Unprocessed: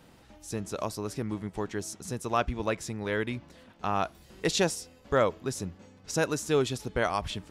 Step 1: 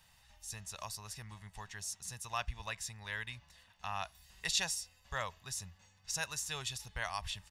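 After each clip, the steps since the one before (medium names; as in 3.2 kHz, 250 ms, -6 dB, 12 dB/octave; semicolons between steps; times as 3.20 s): amplifier tone stack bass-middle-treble 10-0-10; comb 1.1 ms, depth 42%; trim -1.5 dB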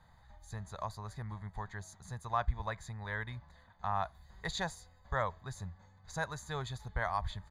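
boxcar filter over 16 samples; trim +8 dB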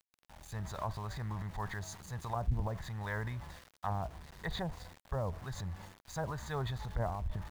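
low-pass that closes with the level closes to 440 Hz, closed at -31 dBFS; transient shaper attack -4 dB, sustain +8 dB; small samples zeroed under -53 dBFS; trim +3.5 dB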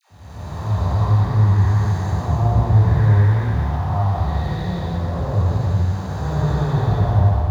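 spectral blur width 583 ms; phase dispersion lows, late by 103 ms, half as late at 690 Hz; reverberation RT60 1.0 s, pre-delay 3 ms, DRR -5.5 dB; trim +4.5 dB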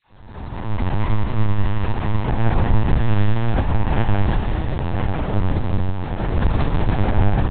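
tracing distortion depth 0.44 ms; delay 994 ms -5.5 dB; LPC vocoder at 8 kHz pitch kept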